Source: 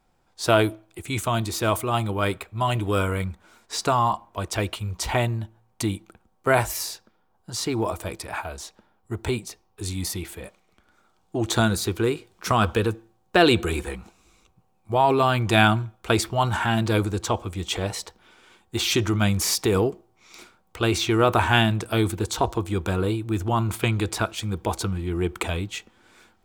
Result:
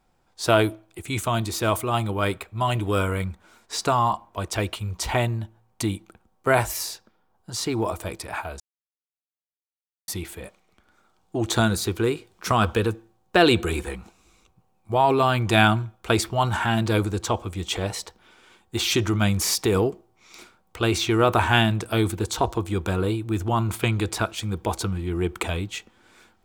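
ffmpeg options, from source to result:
-filter_complex "[0:a]asplit=3[a][b][c];[a]atrim=end=8.6,asetpts=PTS-STARTPTS,afade=t=out:st=8.596:d=0.004:c=hsin[d];[b]atrim=start=8.6:end=10.08,asetpts=PTS-STARTPTS,volume=0[e];[c]atrim=start=10.08,asetpts=PTS-STARTPTS,afade=t=in:d=0.004:c=hsin[f];[d][e][f]concat=n=3:v=0:a=1"

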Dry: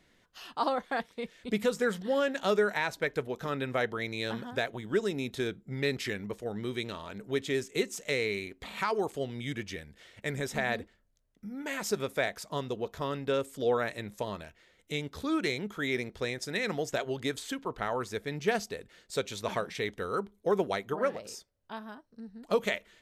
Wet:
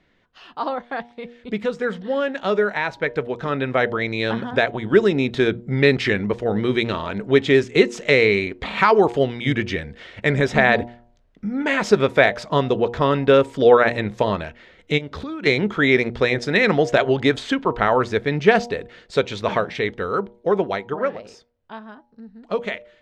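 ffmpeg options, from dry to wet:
-filter_complex "[0:a]asplit=3[a][b][c];[a]afade=t=out:st=14.97:d=0.02[d];[b]acompressor=threshold=-42dB:ratio=16:attack=3.2:release=140:knee=1:detection=peak,afade=t=in:st=14.97:d=0.02,afade=t=out:st=15.45:d=0.02[e];[c]afade=t=in:st=15.45:d=0.02[f];[d][e][f]amix=inputs=3:normalize=0,lowpass=3.3k,bandreject=f=119.3:t=h:w=4,bandreject=f=238.6:t=h:w=4,bandreject=f=357.9:t=h:w=4,bandreject=f=477.2:t=h:w=4,bandreject=f=596.5:t=h:w=4,bandreject=f=715.8:t=h:w=4,bandreject=f=835.1:t=h:w=4,bandreject=f=954.4:t=h:w=4,dynaudnorm=f=380:g=21:m=12dB,volume=4dB"

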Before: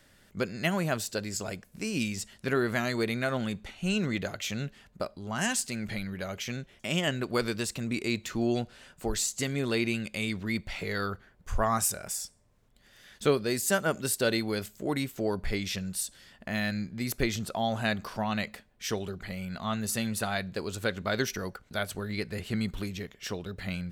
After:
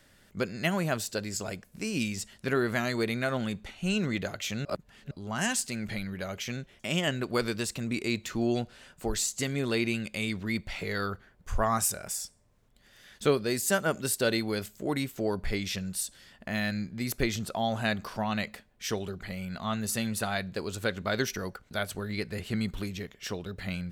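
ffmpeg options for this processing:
-filter_complex "[0:a]asplit=3[a][b][c];[a]atrim=end=4.652[d];[b]atrim=start=4.648:end=5.112,asetpts=PTS-STARTPTS,areverse[e];[c]atrim=start=5.108[f];[d][e]acrossfade=d=0.004:c1=hsin:c2=hsin[g];[g][f]acrossfade=d=0.004:c1=hsin:c2=hsin"

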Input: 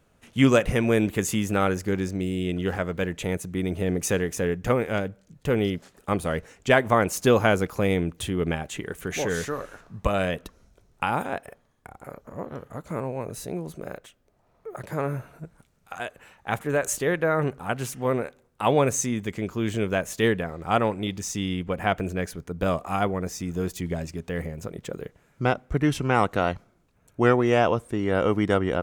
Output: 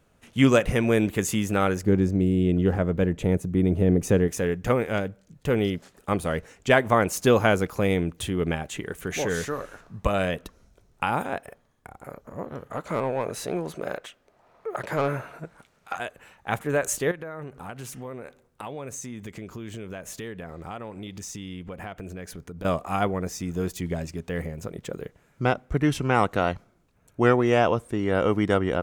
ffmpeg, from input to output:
-filter_complex "[0:a]asettb=1/sr,asplit=3[a][b][c];[a]atrim=end=1.834[d];[b]atrim=start=1.83:end=4.28,asetpts=PTS-STARTPTS,afade=t=in:d=0.004:c=qsin,afade=t=out:st=2.446:d=0.004:c=qsin,tiltshelf=f=810:g=7[e];[c]atrim=start=4.276[f];[d][e]acrossfade=d=0.004:c1=hsin:c2=qsin[g];[g][f]acrossfade=d=0.004:c1=qsin:c2=hsin,asettb=1/sr,asplit=3[h][i][j];[h]atrim=end=12.714[k];[i]atrim=start=12.71:end=15.97,asetpts=PTS-STARTPTS,afade=t=in:d=0.004:c=qsin,afade=t=out:st=3.256:d=0.004:c=qsin,asplit=2[l][m];[m]highpass=f=720:p=1,volume=16dB,asoftclip=type=tanh:threshold=-14dB[n];[l][n]amix=inputs=2:normalize=0,lowpass=f=3.1k:p=1,volume=-6dB[o];[j]atrim=start=15.966[p];[k][o]acrossfade=d=0.004:c1=hsin:c2=qsin[q];[q][p]acrossfade=d=0.004:c1=qsin:c2=hsin,asettb=1/sr,asplit=3[r][s][t];[r]atrim=end=17.114[u];[s]atrim=start=17.11:end=22.65,asetpts=PTS-STARTPTS,afade=t=in:d=0.004:c=qsin,afade=t=out:st=5.536:d=0.004:c=qsin,acompressor=threshold=-34dB:ratio=5:attack=3.2:release=140:knee=1:detection=peak[v];[t]atrim=start=22.646[w];[u][v]acrossfade=d=0.004:c1=hsin:c2=qsin[x];[x][w]acrossfade=d=0.004:c1=qsin:c2=hsin"

